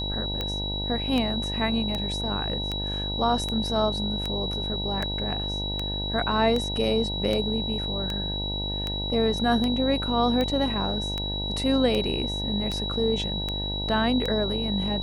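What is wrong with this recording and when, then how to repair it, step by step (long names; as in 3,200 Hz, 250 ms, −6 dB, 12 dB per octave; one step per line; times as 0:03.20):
mains buzz 50 Hz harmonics 19 −32 dBFS
scratch tick 78 rpm −15 dBFS
whistle 3,900 Hz −30 dBFS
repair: click removal
hum removal 50 Hz, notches 19
notch filter 3,900 Hz, Q 30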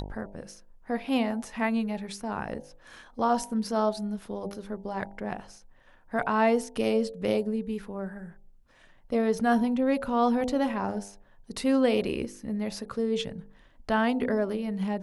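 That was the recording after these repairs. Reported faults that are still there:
none of them is left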